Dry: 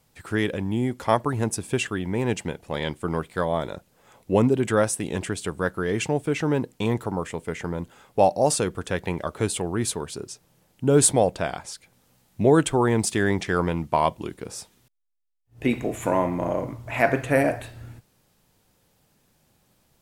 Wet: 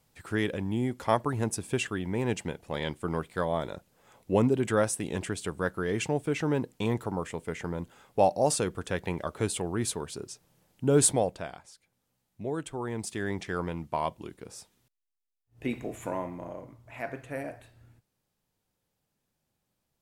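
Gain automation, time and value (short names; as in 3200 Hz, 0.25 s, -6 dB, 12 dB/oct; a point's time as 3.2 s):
11.08 s -4.5 dB
11.72 s -16 dB
12.59 s -16 dB
13.39 s -9 dB
15.96 s -9 dB
16.64 s -16 dB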